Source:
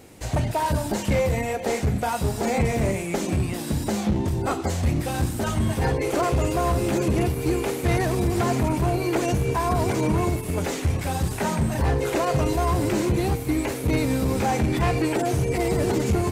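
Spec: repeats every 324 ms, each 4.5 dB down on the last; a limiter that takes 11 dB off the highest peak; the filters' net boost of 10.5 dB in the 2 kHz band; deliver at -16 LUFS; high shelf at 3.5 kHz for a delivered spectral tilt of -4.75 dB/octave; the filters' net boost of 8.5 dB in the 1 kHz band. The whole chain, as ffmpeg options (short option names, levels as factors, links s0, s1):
-af "equalizer=f=1000:t=o:g=8.5,equalizer=f=2000:t=o:g=8.5,highshelf=f=3500:g=6,alimiter=limit=0.141:level=0:latency=1,aecho=1:1:324|648|972|1296|1620|1944|2268|2592|2916:0.596|0.357|0.214|0.129|0.0772|0.0463|0.0278|0.0167|0.01,volume=2.24"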